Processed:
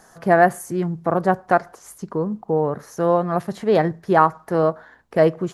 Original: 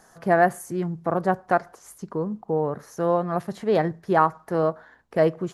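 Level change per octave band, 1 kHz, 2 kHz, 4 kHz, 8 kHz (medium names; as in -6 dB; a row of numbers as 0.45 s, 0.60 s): +4.0 dB, +4.0 dB, +4.0 dB, +4.0 dB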